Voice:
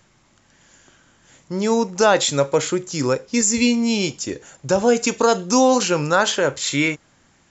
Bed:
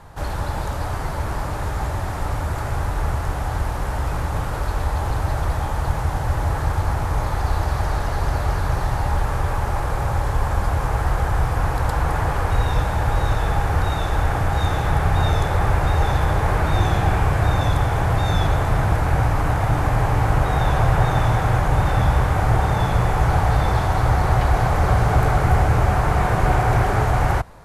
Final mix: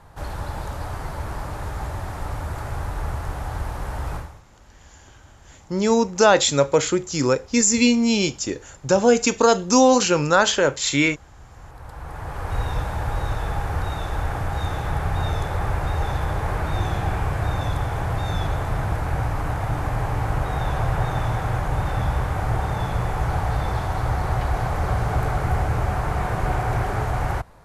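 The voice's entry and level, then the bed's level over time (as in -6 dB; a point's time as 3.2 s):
4.20 s, +0.5 dB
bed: 4.16 s -5 dB
4.43 s -28 dB
11.32 s -28 dB
12.58 s -5.5 dB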